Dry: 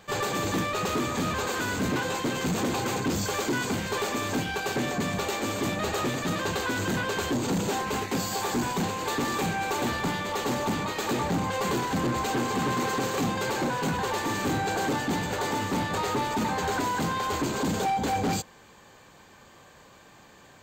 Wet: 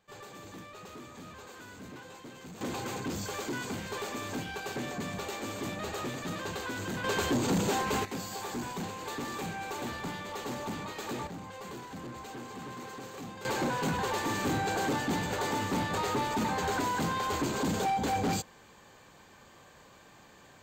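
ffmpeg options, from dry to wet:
ffmpeg -i in.wav -af "asetnsamples=nb_out_samples=441:pad=0,asendcmd='2.61 volume volume -8dB;7.04 volume volume -1dB;8.05 volume volume -9dB;11.27 volume volume -15.5dB;13.45 volume volume -3dB',volume=-19dB" out.wav

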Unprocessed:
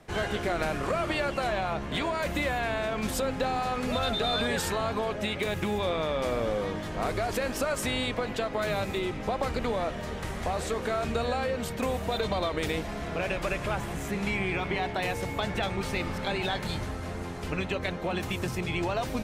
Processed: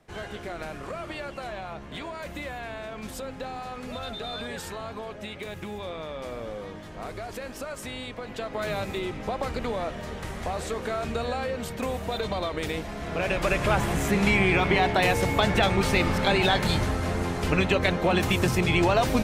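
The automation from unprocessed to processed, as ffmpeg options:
ffmpeg -i in.wav -af "volume=8dB,afade=type=in:start_time=8.19:duration=0.47:silence=0.473151,afade=type=in:start_time=12.97:duration=0.85:silence=0.375837" out.wav

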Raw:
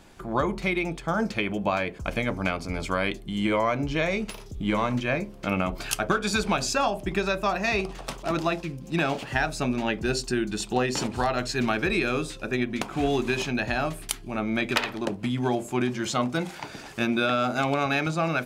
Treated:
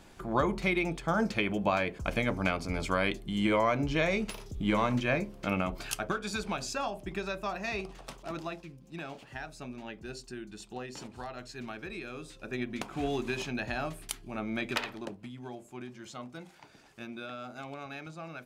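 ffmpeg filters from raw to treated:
ffmpeg -i in.wav -af "volume=6dB,afade=type=out:start_time=5.19:duration=1.03:silence=0.446684,afade=type=out:start_time=7.94:duration=0.99:silence=0.473151,afade=type=in:start_time=12.16:duration=0.52:silence=0.375837,afade=type=out:start_time=14.81:duration=0.5:silence=0.316228" out.wav

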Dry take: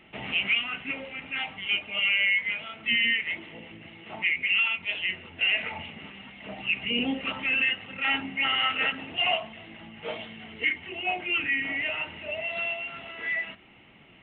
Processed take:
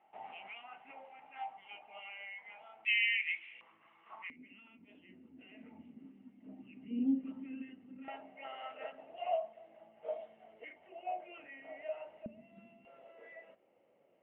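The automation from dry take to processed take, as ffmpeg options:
ffmpeg -i in.wav -af "asetnsamples=nb_out_samples=441:pad=0,asendcmd='2.85 bandpass f 2400;3.61 bandpass f 1100;4.3 bandpass f 260;8.08 bandpass f 630;12.26 bandpass f 220;12.85 bandpass f 540',bandpass=frequency=800:width_type=q:width=6.7:csg=0" out.wav

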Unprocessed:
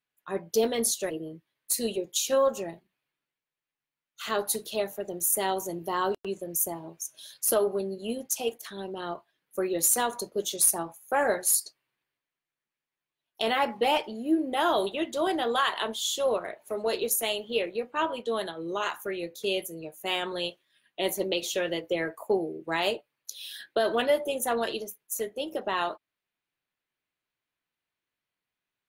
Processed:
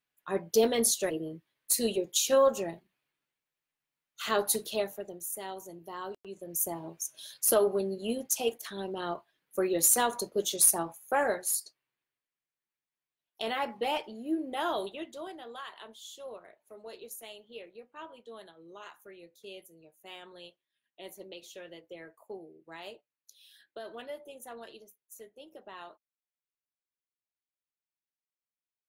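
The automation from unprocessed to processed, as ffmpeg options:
ffmpeg -i in.wav -af "volume=12.5dB,afade=type=out:start_time=4.61:duration=0.63:silence=0.237137,afade=type=in:start_time=6.28:duration=0.56:silence=0.251189,afade=type=out:start_time=11.02:duration=0.41:silence=0.473151,afade=type=out:start_time=14.7:duration=0.65:silence=0.281838" out.wav

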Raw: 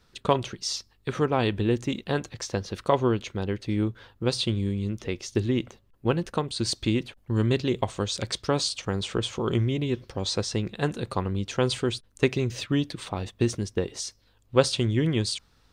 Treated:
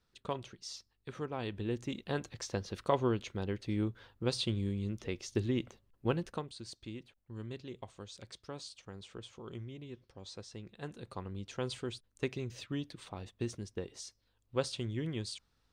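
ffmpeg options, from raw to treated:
ffmpeg -i in.wav -af "volume=-0.5dB,afade=type=in:start_time=1.38:duration=0.95:silence=0.421697,afade=type=out:start_time=6.13:duration=0.49:silence=0.237137,afade=type=in:start_time=10.53:duration=0.98:silence=0.446684" out.wav

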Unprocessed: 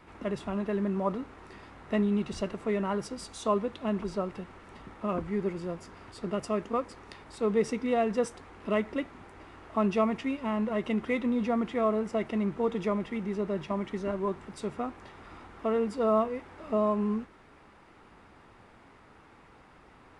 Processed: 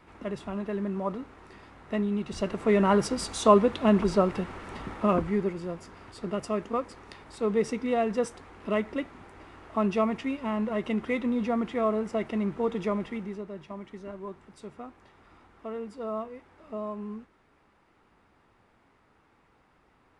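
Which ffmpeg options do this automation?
ffmpeg -i in.wav -af "volume=9dB,afade=type=in:start_time=2.25:duration=0.68:silence=0.298538,afade=type=out:start_time=4.93:duration=0.6:silence=0.375837,afade=type=out:start_time=13.06:duration=0.4:silence=0.354813" out.wav

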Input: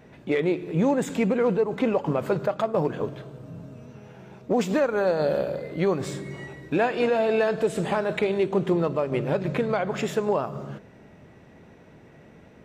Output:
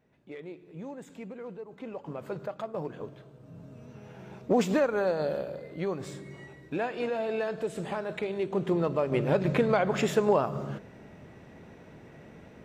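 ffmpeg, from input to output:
ffmpeg -i in.wav -af "volume=9dB,afade=type=in:start_time=1.76:duration=0.65:silence=0.398107,afade=type=in:start_time=3.38:duration=0.97:silence=0.281838,afade=type=out:start_time=4.35:duration=1.1:silence=0.375837,afade=type=in:start_time=8.33:duration=1.14:silence=0.354813" out.wav

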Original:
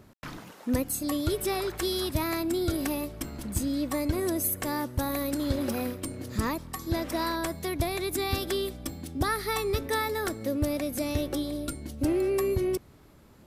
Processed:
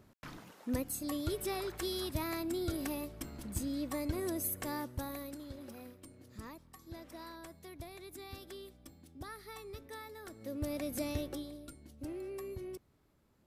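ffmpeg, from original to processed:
ffmpeg -i in.wav -af "volume=5dB,afade=type=out:start_time=4.74:duration=0.73:silence=0.281838,afade=type=in:start_time=10.26:duration=0.71:silence=0.223872,afade=type=out:start_time=10.97:duration=0.63:silence=0.298538" out.wav

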